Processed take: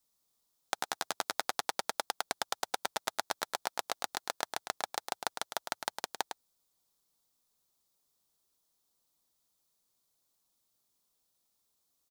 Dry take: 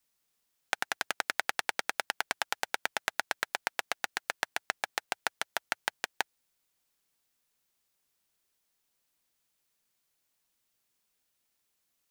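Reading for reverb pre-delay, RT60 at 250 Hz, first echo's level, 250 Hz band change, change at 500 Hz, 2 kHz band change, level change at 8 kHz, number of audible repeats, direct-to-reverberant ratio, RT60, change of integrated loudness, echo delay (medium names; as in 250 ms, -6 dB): no reverb, no reverb, -8.0 dB, +0.5 dB, +0.5 dB, -7.5 dB, +0.5 dB, 1, no reverb, no reverb, -2.5 dB, 106 ms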